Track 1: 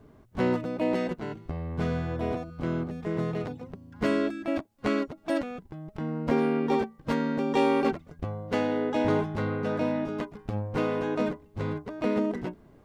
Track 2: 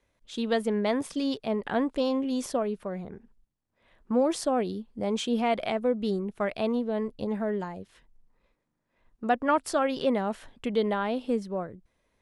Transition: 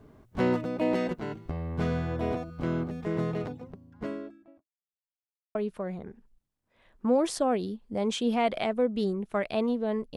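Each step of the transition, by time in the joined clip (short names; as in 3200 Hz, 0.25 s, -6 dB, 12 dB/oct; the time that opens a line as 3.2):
track 1
3.13–4.73 studio fade out
4.73–5.55 mute
5.55 switch to track 2 from 2.61 s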